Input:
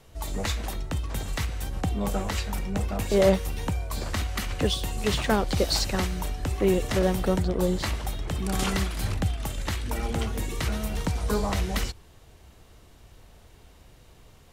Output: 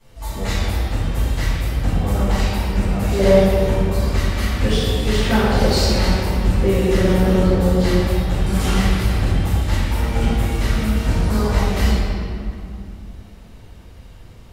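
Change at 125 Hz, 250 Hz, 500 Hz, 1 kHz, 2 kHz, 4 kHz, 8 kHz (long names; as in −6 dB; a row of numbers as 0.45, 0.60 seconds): +10.5, +9.5, +7.5, +7.0, +7.5, +5.5, +3.0 decibels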